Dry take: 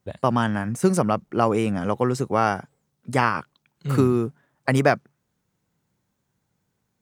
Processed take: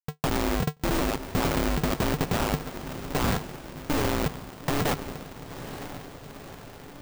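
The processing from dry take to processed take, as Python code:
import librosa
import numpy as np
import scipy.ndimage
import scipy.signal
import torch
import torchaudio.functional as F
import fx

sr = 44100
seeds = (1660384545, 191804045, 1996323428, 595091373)

y = fx.schmitt(x, sr, flips_db=-20.5)
y = fx.echo_diffused(y, sr, ms=926, feedback_pct=58, wet_db=-11.0)
y = y * np.sign(np.sin(2.0 * np.pi * 150.0 * np.arange(len(y)) / sr))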